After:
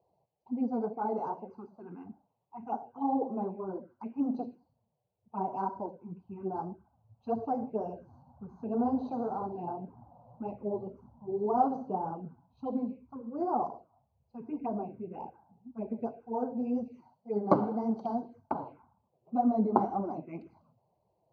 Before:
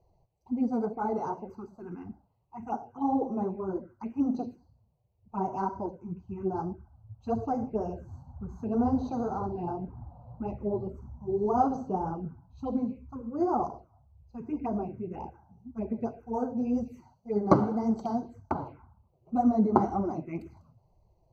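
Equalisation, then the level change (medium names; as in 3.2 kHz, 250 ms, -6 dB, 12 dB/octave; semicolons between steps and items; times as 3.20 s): cabinet simulation 230–5000 Hz, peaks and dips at 350 Hz -6 dB, 1.3 kHz -5 dB, 1.9 kHz -8 dB; treble shelf 3.6 kHz -11 dB; 0.0 dB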